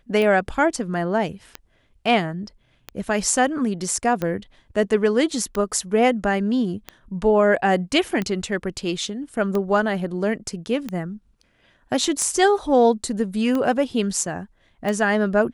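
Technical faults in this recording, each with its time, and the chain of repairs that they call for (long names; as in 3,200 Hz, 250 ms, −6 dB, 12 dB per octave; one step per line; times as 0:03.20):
scratch tick 45 rpm −13 dBFS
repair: click removal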